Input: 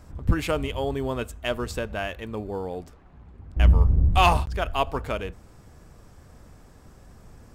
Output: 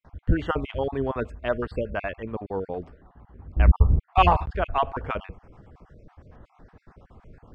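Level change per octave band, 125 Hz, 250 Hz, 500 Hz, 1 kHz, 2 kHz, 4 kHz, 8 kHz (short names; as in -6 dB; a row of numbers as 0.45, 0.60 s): -1.0 dB, 0.0 dB, +0.5 dB, +1.5 dB, -1.5 dB, -6.5 dB, under -20 dB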